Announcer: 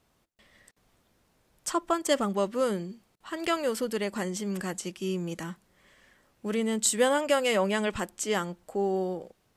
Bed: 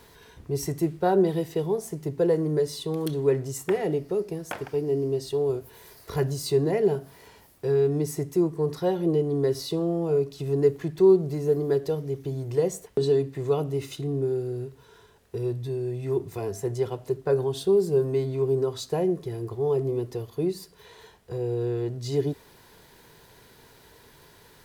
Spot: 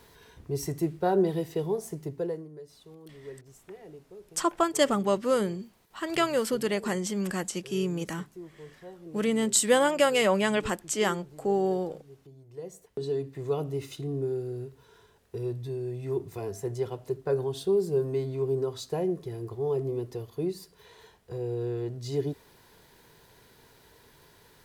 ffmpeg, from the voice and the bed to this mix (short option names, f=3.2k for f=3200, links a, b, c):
-filter_complex "[0:a]adelay=2700,volume=2dB[a];[1:a]volume=14dB,afade=t=out:st=1.93:d=0.56:silence=0.125893,afade=t=in:st=12.49:d=1.14:silence=0.141254[b];[a][b]amix=inputs=2:normalize=0"